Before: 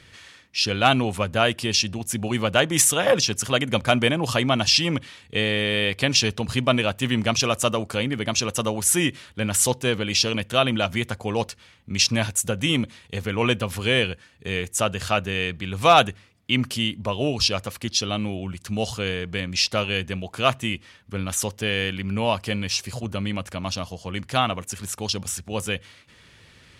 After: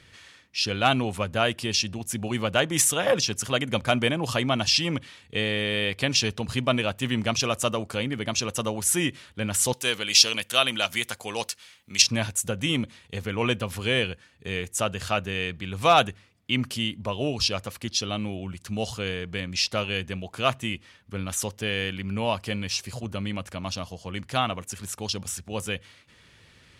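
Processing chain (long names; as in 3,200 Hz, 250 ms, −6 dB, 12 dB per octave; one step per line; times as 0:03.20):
0:09.73–0:12.02: spectral tilt +3.5 dB per octave
level −3.5 dB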